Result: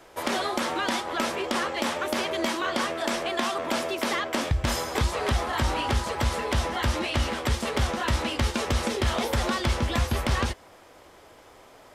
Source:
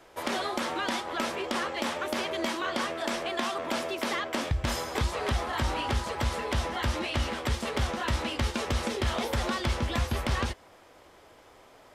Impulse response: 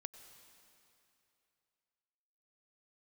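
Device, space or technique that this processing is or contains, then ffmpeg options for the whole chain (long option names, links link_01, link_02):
exciter from parts: -filter_complex "[0:a]asplit=2[link_01][link_02];[link_02]highpass=4400,asoftclip=type=tanh:threshold=-29.5dB,volume=-12dB[link_03];[link_01][link_03]amix=inputs=2:normalize=0,volume=3.5dB"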